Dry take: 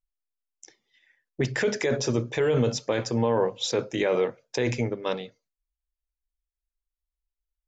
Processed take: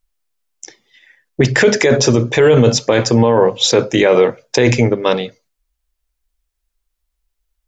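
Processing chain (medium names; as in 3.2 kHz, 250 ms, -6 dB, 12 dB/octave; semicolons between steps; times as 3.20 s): loudness maximiser +16 dB; trim -1 dB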